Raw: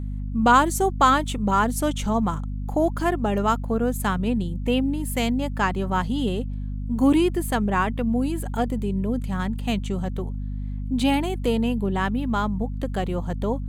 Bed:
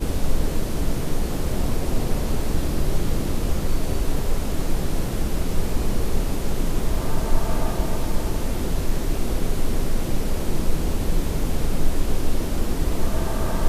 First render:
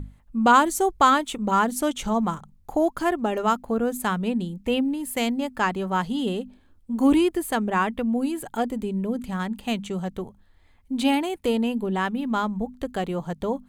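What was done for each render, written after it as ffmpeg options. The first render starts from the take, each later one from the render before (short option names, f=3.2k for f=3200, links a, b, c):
-af "bandreject=f=50:t=h:w=6,bandreject=f=100:t=h:w=6,bandreject=f=150:t=h:w=6,bandreject=f=200:t=h:w=6,bandreject=f=250:t=h:w=6"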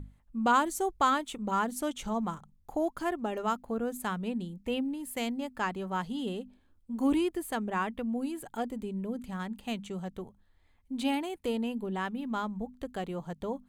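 -af "volume=-8.5dB"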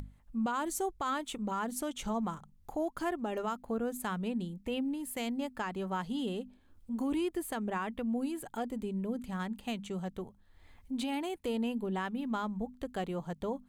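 -af "alimiter=level_in=1.5dB:limit=-24dB:level=0:latency=1:release=121,volume=-1.5dB,acompressor=mode=upward:threshold=-45dB:ratio=2.5"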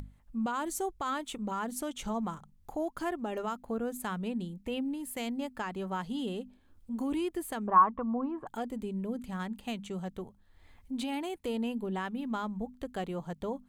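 -filter_complex "[0:a]asettb=1/sr,asplit=3[a][b][c];[a]atrim=end=7.674[d];[b]atrim=start=7.67:end=8.47,asetpts=PTS-STARTPTS,afade=t=in:d=0.004:c=qsin,afade=t=out:st=0.796:d=0.004:c=qsin,lowpass=f=1.1k:t=q:w=9.5[e];[c]atrim=start=8.466[f];[d][e]acrossfade=d=0.004:c1=hsin:c2=qsin[g];[g][f]acrossfade=d=0.004:c1=qsin:c2=hsin"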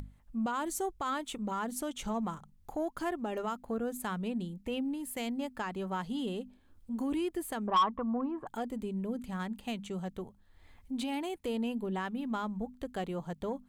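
-af "asoftclip=type=tanh:threshold=-21dB"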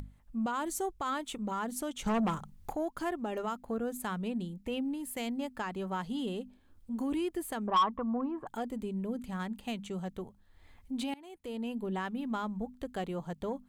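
-filter_complex "[0:a]asettb=1/sr,asplit=3[a][b][c];[a]atrim=end=2.064[d];[b]atrim=start=2.06:end=2.73,asetpts=PTS-STARTPTS,afade=t=in:d=0.004:c=qsin,afade=t=out:st=0.666:d=0.004:c=qsin,aeval=exprs='0.0501*sin(PI/2*1.58*val(0)/0.0501)':c=same[e];[c]atrim=start=2.726[f];[d][e]acrossfade=d=0.004:c1=hsin:c2=qsin[g];[g][f]acrossfade=d=0.004:c1=qsin:c2=hsin,asplit=2[h][i];[h]atrim=end=11.14,asetpts=PTS-STARTPTS,afade=t=out:st=11.136:d=0.004:c=hsin:silence=0.0668344[j];[i]atrim=start=11.14,asetpts=PTS-STARTPTS,afade=t=in:d=0.75:silence=0.0668344[k];[j][k]concat=n=2:v=0:a=1"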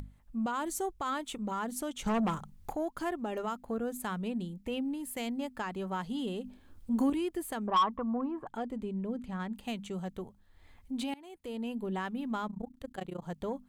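-filter_complex "[0:a]asettb=1/sr,asplit=3[a][b][c];[a]atrim=end=6.444[d];[b]atrim=start=6.44:end=7.1,asetpts=PTS-STARTPTS,afade=t=in:d=0.004:c=qsin,afade=t=out:st=0.656:d=0.004:c=qsin,acontrast=63[e];[c]atrim=start=7.096[f];[d][e]acrossfade=d=0.004:c1=hsin:c2=qsin[g];[g][f]acrossfade=d=0.004:c1=qsin:c2=hsin,asettb=1/sr,asplit=3[h][i][j];[h]atrim=end=8.454[k];[i]atrim=start=8.45:end=9.53,asetpts=PTS-STARTPTS,afade=t=in:d=0.004:c=qsin,afade=t=out:st=1.076:d=0.004:c=qsin,aemphasis=mode=reproduction:type=50kf[l];[j]atrim=start=9.526[m];[k][l]acrossfade=d=0.004:c1=hsin:c2=qsin[n];[n][m]acrossfade=d=0.004:c1=qsin:c2=hsin,asettb=1/sr,asplit=3[o][p][q];[o]atrim=end=12.474[r];[p]atrim=start=12.47:end=13.23,asetpts=PTS-STARTPTS,afade=t=in:d=0.004:c=qsin,afade=t=out:st=0.756:d=0.004:c=qsin,tremolo=f=29:d=0.947[s];[q]atrim=start=13.226[t];[r][s]acrossfade=d=0.004:c1=hsin:c2=qsin[u];[u][t]acrossfade=d=0.004:c1=qsin:c2=hsin"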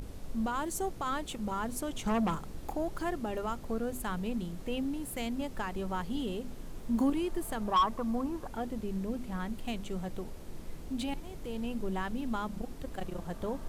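-filter_complex "[1:a]volume=-21.5dB[a];[0:a][a]amix=inputs=2:normalize=0"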